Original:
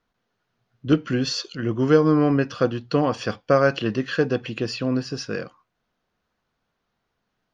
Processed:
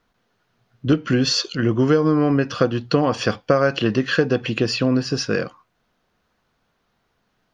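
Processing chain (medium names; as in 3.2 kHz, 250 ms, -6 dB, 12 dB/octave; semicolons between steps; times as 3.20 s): compression 5:1, threshold -21 dBFS, peak gain reduction 10 dB; trim +7.5 dB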